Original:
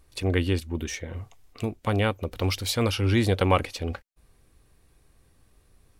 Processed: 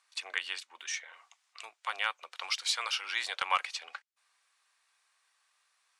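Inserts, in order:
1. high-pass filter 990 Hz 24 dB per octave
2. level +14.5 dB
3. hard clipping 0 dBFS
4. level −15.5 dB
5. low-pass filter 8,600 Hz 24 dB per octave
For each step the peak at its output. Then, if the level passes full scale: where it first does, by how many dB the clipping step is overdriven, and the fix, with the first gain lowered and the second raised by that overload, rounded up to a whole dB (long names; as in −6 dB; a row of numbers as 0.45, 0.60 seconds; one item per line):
−11.0, +3.5, 0.0, −15.5, −15.0 dBFS
step 2, 3.5 dB
step 2 +10.5 dB, step 4 −11.5 dB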